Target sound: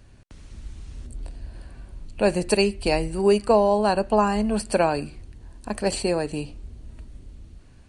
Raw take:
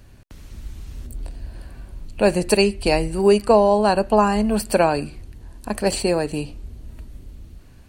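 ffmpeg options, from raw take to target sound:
-af "aresample=22050,aresample=44100,volume=0.668"

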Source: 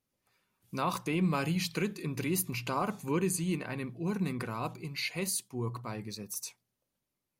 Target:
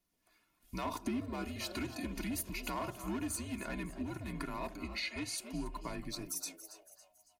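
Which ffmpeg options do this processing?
-filter_complex "[0:a]volume=25.1,asoftclip=hard,volume=0.0398,asettb=1/sr,asplit=3[s0][s1][s2];[s0]atrim=end=0.854[s3];[s1]atrim=start=0.85:end=1.44,asetpts=PTS-STARTPTS,afade=t=in:d=0.004:c=qsin,afade=t=out:st=0.586:d=0.004:c=qsin,equalizer=f=380:t=o:w=1.9:g=8.5[s4];[s2]atrim=start=1.436[s5];[s3][s4]acrossfade=d=0.004:c1=hsin:c2=qsin[s6];[s6][s5]acrossfade=d=0.004:c1=qsin:c2=hsin,asettb=1/sr,asplit=3[s7][s8][s9];[s7]atrim=end=4.834[s10];[s8]atrim=start=4.83:end=5.38,asetpts=PTS-STARTPTS,afade=t=in:d=0.004:c=qsin,afade=t=out:st=0.546:d=0.004:c=qsin,lowpass=6700[s11];[s9]atrim=start=5.376[s12];[s10][s11]acrossfade=d=0.004:c1=hsin:c2=qsin[s13];[s13][s12]acrossfade=d=0.004:c1=qsin:c2=hsin,asplit=5[s14][s15][s16][s17][s18];[s15]adelay=278,afreqshift=150,volume=0.158[s19];[s16]adelay=556,afreqshift=300,volume=0.07[s20];[s17]adelay=834,afreqshift=450,volume=0.0305[s21];[s18]adelay=1112,afreqshift=600,volume=0.0135[s22];[s14][s19][s20][s21][s22]amix=inputs=5:normalize=0,acompressor=threshold=0.0126:ratio=6,aecho=1:1:2.7:0.62,afreqshift=-83,volume=1.12"

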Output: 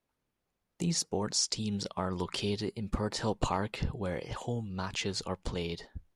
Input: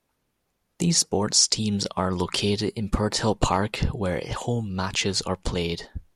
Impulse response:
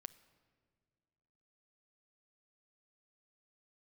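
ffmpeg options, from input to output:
-af "highshelf=f=5800:g=-5,volume=0.376"

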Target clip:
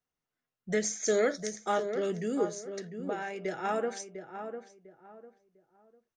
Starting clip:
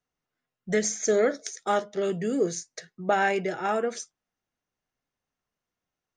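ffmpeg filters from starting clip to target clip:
-filter_complex "[0:a]asettb=1/sr,asplit=3[s0][s1][s2];[s0]atrim=end=1.064[s3];[s1]atrim=start=1.06:end=1.46,asetpts=PTS-STARTPTS,afade=t=in:d=0.004:c=qsin,afade=t=out:st=0.396:d=0.004:c=qsin,highshelf=f=2700:g=9[s4];[s2]atrim=start=1.456[s5];[s3][s4]acrossfade=d=0.004:c1=hsin:c2=qsin[s6];[s6][s5]acrossfade=d=0.004:c1=qsin:c2=hsin,asettb=1/sr,asplit=3[s7][s8][s9];[s7]atrim=end=2.454[s10];[s8]atrim=start=2.45:end=3.45,asetpts=PTS-STARTPTS,afade=t=in:d=0.004:c=qsin,afade=t=out:st=0.996:d=0.004:c=qsin,acompressor=threshold=0.0141:ratio=2[s11];[s9]atrim=start=3.446[s12];[s10][s11]acrossfade=d=0.004:c1=hsin:c2=qsin[s13];[s13][s12]acrossfade=d=0.004:c1=qsin:c2=hsin,asplit=2[s14][s15];[s15]adelay=700,lowpass=f=1400:p=1,volume=0.398,asplit=2[s16][s17];[s17]adelay=700,lowpass=f=1400:p=1,volume=0.29,asplit=2[s18][s19];[s19]adelay=700,lowpass=f=1400:p=1,volume=0.29[s20];[s14][s16][s18][s20]amix=inputs=4:normalize=0,volume=0.596"

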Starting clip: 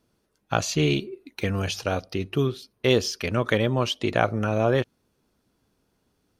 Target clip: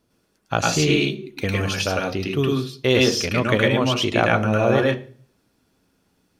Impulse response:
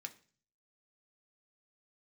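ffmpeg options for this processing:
-filter_complex "[0:a]asplit=2[s0][s1];[1:a]atrim=start_sample=2205,adelay=105[s2];[s1][s2]afir=irnorm=-1:irlink=0,volume=2.11[s3];[s0][s3]amix=inputs=2:normalize=0,volume=1.19"

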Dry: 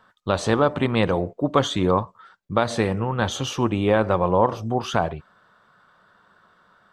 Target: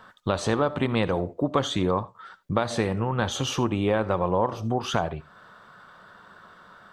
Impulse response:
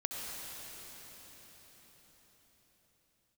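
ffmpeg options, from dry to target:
-filter_complex "[0:a]acompressor=threshold=0.0141:ratio=2,asplit=2[s0][s1];[1:a]atrim=start_sample=2205,atrim=end_sample=3969[s2];[s1][s2]afir=irnorm=-1:irlink=0,volume=0.596[s3];[s0][s3]amix=inputs=2:normalize=0,volume=1.58"

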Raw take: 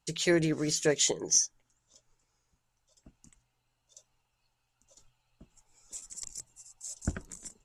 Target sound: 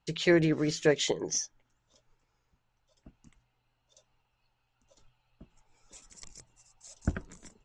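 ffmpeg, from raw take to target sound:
-af "lowpass=3700,volume=1.33"

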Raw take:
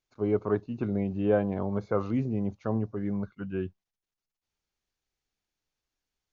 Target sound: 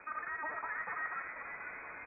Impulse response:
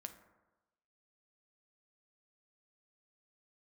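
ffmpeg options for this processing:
-filter_complex "[0:a]aeval=exprs='val(0)+0.5*0.0237*sgn(val(0))':c=same,highpass=280,areverse,acompressor=threshold=0.0112:ratio=6,areverse,acrusher=bits=8:dc=4:mix=0:aa=0.000001,asetrate=134946,aresample=44100,asplit=9[s0][s1][s2][s3][s4][s5][s6][s7][s8];[s1]adelay=488,afreqshift=-110,volume=0.447[s9];[s2]adelay=976,afreqshift=-220,volume=0.272[s10];[s3]adelay=1464,afreqshift=-330,volume=0.166[s11];[s4]adelay=1952,afreqshift=-440,volume=0.101[s12];[s5]adelay=2440,afreqshift=-550,volume=0.0617[s13];[s6]adelay=2928,afreqshift=-660,volume=0.0376[s14];[s7]adelay=3416,afreqshift=-770,volume=0.0229[s15];[s8]adelay=3904,afreqshift=-880,volume=0.014[s16];[s0][s9][s10][s11][s12][s13][s14][s15][s16]amix=inputs=9:normalize=0[s17];[1:a]atrim=start_sample=2205[s18];[s17][s18]afir=irnorm=-1:irlink=0,lowpass=f=2100:t=q:w=0.5098,lowpass=f=2100:t=q:w=0.6013,lowpass=f=2100:t=q:w=0.9,lowpass=f=2100:t=q:w=2.563,afreqshift=-2500,volume=2"

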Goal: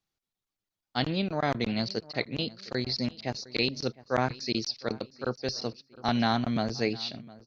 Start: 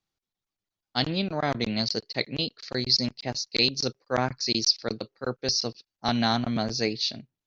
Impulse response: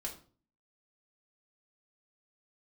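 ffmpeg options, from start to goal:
-filter_complex "[0:a]asplit=2[s0][s1];[s1]adelay=709,lowpass=f=2200:p=1,volume=0.1,asplit=2[s2][s3];[s3]adelay=709,lowpass=f=2200:p=1,volume=0.42,asplit=2[s4][s5];[s5]adelay=709,lowpass=f=2200:p=1,volume=0.42[s6];[s0][s2][s4][s6]amix=inputs=4:normalize=0,acrossover=split=3600[s7][s8];[s8]acompressor=threshold=0.00891:ratio=4:attack=1:release=60[s9];[s7][s9]amix=inputs=2:normalize=0,volume=0.891"

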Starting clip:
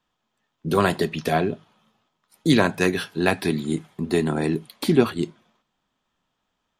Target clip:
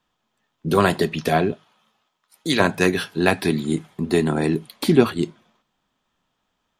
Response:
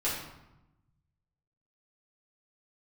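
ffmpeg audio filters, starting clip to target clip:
-filter_complex "[0:a]asettb=1/sr,asplit=3[s0][s1][s2];[s0]atrim=end=1.524[s3];[s1]atrim=start=1.52:end=2.6,asetpts=PTS-STARTPTS,afade=t=in:d=0.004:c=qsin,afade=t=out:st=1.076:d=0.004:c=qsin,lowshelf=f=410:g=-12[s4];[s2]atrim=start=2.596[s5];[s3][s4]acrossfade=d=0.004:c1=hsin:c2=qsin[s6];[s6][s5]acrossfade=d=0.004:c1=qsin:c2=hsin,volume=1.33"

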